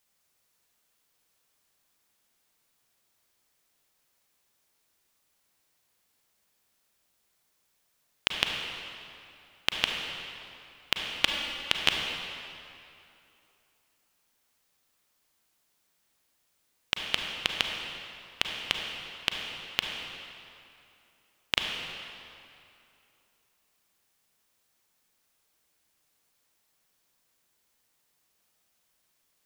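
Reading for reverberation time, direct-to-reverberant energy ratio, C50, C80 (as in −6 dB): 2.8 s, 1.5 dB, 2.0 dB, 3.0 dB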